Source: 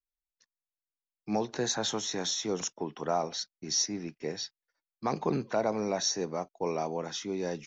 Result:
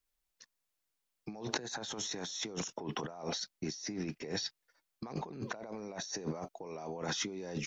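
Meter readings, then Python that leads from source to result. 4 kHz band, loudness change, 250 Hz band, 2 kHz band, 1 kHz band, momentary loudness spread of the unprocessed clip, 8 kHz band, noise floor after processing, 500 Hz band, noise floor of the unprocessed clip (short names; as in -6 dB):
-6.0 dB, -7.5 dB, -6.0 dB, -1.5 dB, -9.5 dB, 8 LU, n/a, -85 dBFS, -10.0 dB, under -85 dBFS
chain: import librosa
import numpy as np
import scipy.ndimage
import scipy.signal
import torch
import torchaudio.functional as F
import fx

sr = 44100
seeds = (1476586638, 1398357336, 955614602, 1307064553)

y = fx.over_compress(x, sr, threshold_db=-42.0, ratio=-1.0)
y = F.gain(torch.from_numpy(y), 1.0).numpy()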